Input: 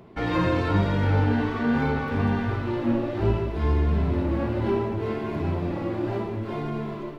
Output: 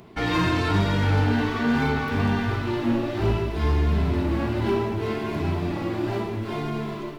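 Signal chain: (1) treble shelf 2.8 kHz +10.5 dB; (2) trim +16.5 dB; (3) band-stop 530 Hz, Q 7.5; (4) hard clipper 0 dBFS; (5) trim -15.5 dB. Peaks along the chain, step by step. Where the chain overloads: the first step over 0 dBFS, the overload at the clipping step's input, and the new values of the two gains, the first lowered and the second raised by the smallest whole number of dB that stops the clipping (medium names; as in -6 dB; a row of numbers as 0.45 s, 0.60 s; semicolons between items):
-10.0 dBFS, +6.5 dBFS, +6.0 dBFS, 0.0 dBFS, -15.5 dBFS; step 2, 6.0 dB; step 2 +10.5 dB, step 5 -9.5 dB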